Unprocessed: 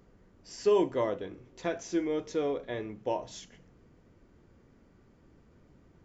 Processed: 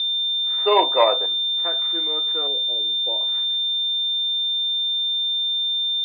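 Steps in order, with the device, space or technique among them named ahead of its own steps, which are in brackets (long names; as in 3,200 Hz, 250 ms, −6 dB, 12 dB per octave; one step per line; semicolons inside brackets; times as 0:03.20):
0:00.58–0:01.26: parametric band 710 Hz +14.5 dB 1.6 octaves
0:02.47–0:03.21: Chebyshev band-stop filter 530–5,400 Hz, order 2
toy sound module (linearly interpolated sample-rate reduction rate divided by 4×; switching amplifier with a slow clock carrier 3,600 Hz; loudspeaker in its box 620–4,200 Hz, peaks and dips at 880 Hz +5 dB, 1,300 Hz +10 dB, 2,000 Hz +4 dB, 3,500 Hz +7 dB)
level +3.5 dB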